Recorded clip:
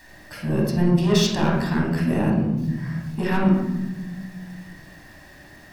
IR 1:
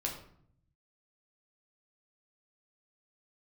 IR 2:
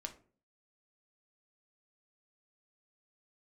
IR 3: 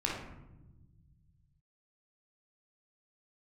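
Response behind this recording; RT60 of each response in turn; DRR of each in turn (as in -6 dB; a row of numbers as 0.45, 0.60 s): 3; 0.65, 0.45, 1.0 s; -1.0, 4.5, -3.0 dB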